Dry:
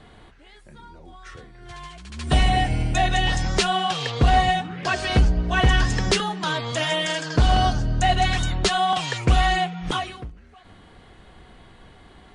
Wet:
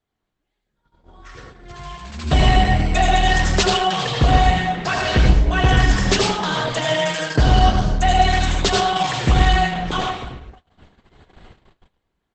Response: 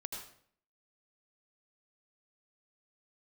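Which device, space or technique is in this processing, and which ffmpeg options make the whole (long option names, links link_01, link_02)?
speakerphone in a meeting room: -filter_complex "[1:a]atrim=start_sample=2205[link_01];[0:a][link_01]afir=irnorm=-1:irlink=0,asplit=2[link_02][link_03];[link_03]adelay=220,highpass=300,lowpass=3400,asoftclip=type=hard:threshold=-16dB,volume=-16dB[link_04];[link_02][link_04]amix=inputs=2:normalize=0,dynaudnorm=framelen=350:gausssize=7:maxgain=9.5dB,agate=range=-28dB:threshold=-39dB:ratio=16:detection=peak" -ar 48000 -c:a libopus -b:a 12k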